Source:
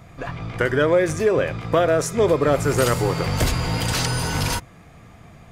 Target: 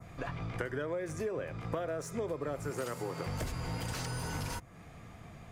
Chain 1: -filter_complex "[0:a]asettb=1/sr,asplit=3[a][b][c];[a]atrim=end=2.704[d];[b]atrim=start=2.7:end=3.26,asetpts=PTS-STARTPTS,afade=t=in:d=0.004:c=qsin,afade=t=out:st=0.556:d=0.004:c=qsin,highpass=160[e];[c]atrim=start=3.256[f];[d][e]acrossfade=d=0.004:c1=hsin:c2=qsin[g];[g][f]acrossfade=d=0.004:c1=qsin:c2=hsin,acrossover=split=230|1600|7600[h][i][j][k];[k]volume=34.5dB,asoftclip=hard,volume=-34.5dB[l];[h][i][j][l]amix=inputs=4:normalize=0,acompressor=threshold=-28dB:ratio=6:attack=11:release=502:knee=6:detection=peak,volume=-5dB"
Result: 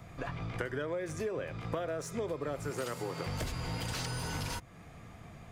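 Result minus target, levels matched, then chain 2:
4000 Hz band +3.5 dB
-filter_complex "[0:a]asettb=1/sr,asplit=3[a][b][c];[a]atrim=end=2.704[d];[b]atrim=start=2.7:end=3.26,asetpts=PTS-STARTPTS,afade=t=in:d=0.004:c=qsin,afade=t=out:st=0.556:d=0.004:c=qsin,highpass=160[e];[c]atrim=start=3.256[f];[d][e]acrossfade=d=0.004:c1=hsin:c2=qsin[g];[g][f]acrossfade=d=0.004:c1=qsin:c2=hsin,acrossover=split=230|1600|7600[h][i][j][k];[k]volume=34.5dB,asoftclip=hard,volume=-34.5dB[l];[h][i][j][l]amix=inputs=4:normalize=0,acompressor=threshold=-28dB:ratio=6:attack=11:release=502:knee=6:detection=peak,adynamicequalizer=threshold=0.00282:dfrequency=3600:dqfactor=1.1:tfrequency=3600:tqfactor=1.1:attack=5:release=100:ratio=0.438:range=2.5:mode=cutabove:tftype=bell,volume=-5dB"

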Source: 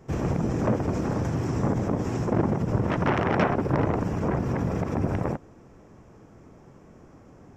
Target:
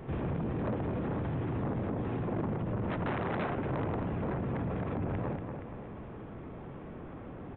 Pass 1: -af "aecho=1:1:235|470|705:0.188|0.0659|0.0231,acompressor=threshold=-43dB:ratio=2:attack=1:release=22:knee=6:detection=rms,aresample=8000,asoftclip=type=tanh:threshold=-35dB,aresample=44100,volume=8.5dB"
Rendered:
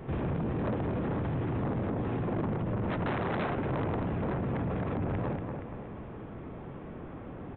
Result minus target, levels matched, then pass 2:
compressor: peak gain reduction -3.5 dB
-af "aecho=1:1:235|470|705:0.188|0.0659|0.0231,acompressor=threshold=-49.5dB:ratio=2:attack=1:release=22:knee=6:detection=rms,aresample=8000,asoftclip=type=tanh:threshold=-35dB,aresample=44100,volume=8.5dB"

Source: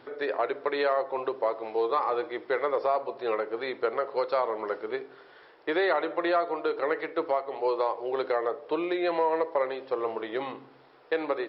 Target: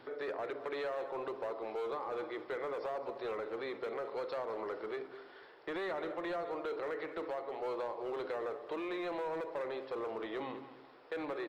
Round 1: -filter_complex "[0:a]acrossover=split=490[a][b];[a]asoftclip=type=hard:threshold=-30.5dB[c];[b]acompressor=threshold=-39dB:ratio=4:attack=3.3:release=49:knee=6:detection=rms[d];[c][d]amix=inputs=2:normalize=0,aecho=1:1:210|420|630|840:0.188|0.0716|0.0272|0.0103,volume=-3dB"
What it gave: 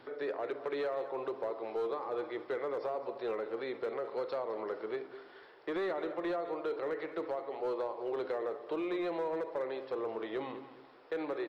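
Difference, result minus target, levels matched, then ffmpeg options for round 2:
hard clip: distortion -7 dB
-filter_complex "[0:a]acrossover=split=490[a][b];[a]asoftclip=type=hard:threshold=-37.5dB[c];[b]acompressor=threshold=-39dB:ratio=4:attack=3.3:release=49:knee=6:detection=rms[d];[c][d]amix=inputs=2:normalize=0,aecho=1:1:210|420|630|840:0.188|0.0716|0.0272|0.0103,volume=-3dB"

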